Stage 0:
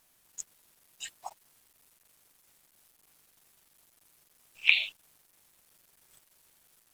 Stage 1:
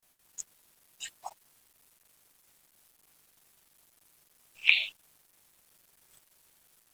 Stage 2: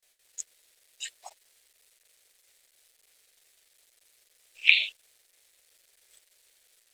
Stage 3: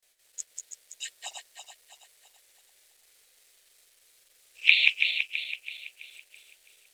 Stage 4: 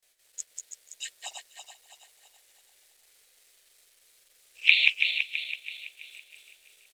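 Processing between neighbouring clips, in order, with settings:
noise gate with hold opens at −56 dBFS
octave-band graphic EQ 125/250/500/1,000/2,000/4,000/8,000 Hz −10/−8/+10/−6/+8/+8/+7 dB; level −5.5 dB
feedback delay that plays each chunk backwards 165 ms, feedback 66%, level −3 dB
repeating echo 485 ms, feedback 46%, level −23 dB

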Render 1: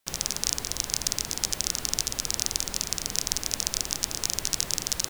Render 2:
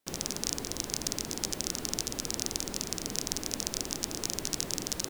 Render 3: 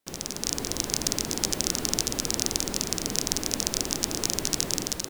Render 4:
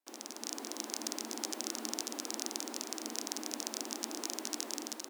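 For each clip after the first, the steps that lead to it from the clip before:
parametric band 300 Hz +11 dB 2 octaves; level −6 dB
automatic gain control
Chebyshev high-pass with heavy ripple 220 Hz, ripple 6 dB; level −6 dB

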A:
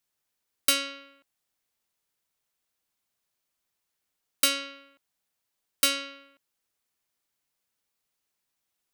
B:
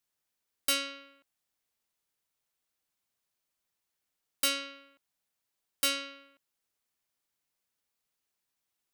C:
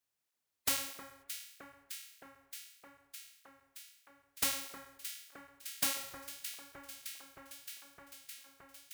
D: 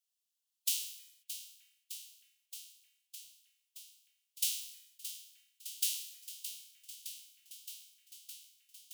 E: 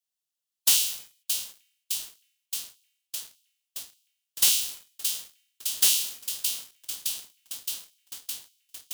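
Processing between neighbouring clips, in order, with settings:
hard clipping −19 dBFS, distortion −10 dB; level −3 dB
compressing power law on the bin magnitudes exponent 0.17; delay that swaps between a low-pass and a high-pass 308 ms, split 1,800 Hz, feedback 88%, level −9.5 dB; through-zero flanger with one copy inverted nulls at 1.6 Hz, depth 6.8 ms; level +1 dB
elliptic high-pass filter 2,900 Hz, stop band 70 dB; level +1 dB
leveller curve on the samples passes 3; level +4.5 dB

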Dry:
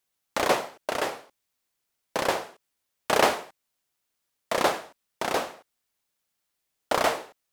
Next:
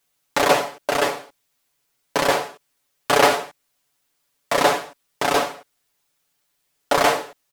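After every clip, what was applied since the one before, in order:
comb filter 7 ms, depth 92%
in parallel at 0 dB: brickwall limiter −15 dBFS, peak gain reduction 10 dB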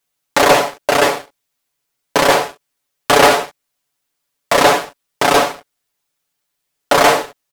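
leveller curve on the samples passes 2
level +1 dB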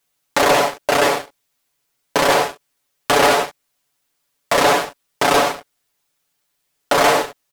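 brickwall limiter −10 dBFS, peak gain reduction 8.5 dB
level +3 dB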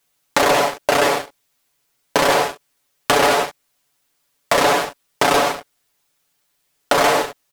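downward compressor, threshold −15 dBFS, peak gain reduction 5 dB
level +3 dB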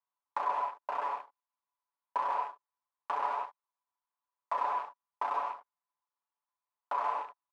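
loose part that buzzes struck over −37 dBFS, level −13 dBFS
resonant band-pass 990 Hz, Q 8.1
level −6.5 dB

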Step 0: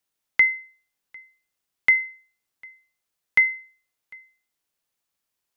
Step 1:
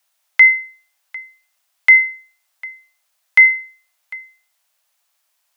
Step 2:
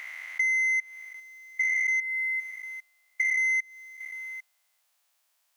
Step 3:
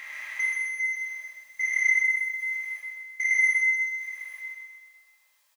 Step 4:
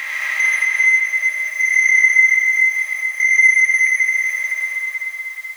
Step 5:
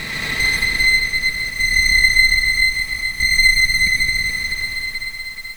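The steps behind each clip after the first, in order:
Butterworth high-pass 560 Hz 96 dB per octave; boost into a limiter +14 dB; level −1 dB
spectrum averaged block by block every 400 ms; leveller curve on the samples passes 1; downward compressor 4 to 1, threshold −26 dBFS, peak gain reduction 9 dB
notch comb filter 720 Hz; repeating echo 128 ms, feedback 49%, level −3 dB; rectangular room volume 820 cubic metres, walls mixed, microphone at 2.2 metres
feedback delay that plays each chunk backwards 215 ms, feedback 61%, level −2.5 dB; comb and all-pass reverb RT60 1.6 s, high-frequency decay 0.5×, pre-delay 55 ms, DRR 0 dB; multiband upward and downward compressor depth 40%; level +9 dB
lower of the sound and its delayed copy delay 4.5 ms; level +1 dB

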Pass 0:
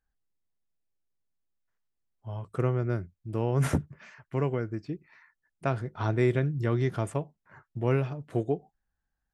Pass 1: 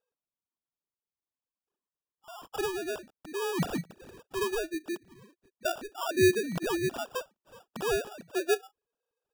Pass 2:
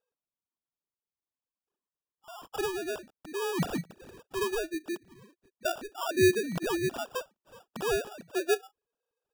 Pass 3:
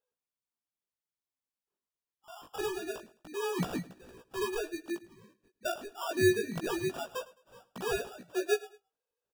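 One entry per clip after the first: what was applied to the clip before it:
three sine waves on the formant tracks; tilt shelving filter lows −4.5 dB, about 900 Hz; decimation without filtering 21×
no processing that can be heard
chorus effect 0.25 Hz, delay 16 ms, depth 3.8 ms; repeating echo 106 ms, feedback 31%, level −20 dB

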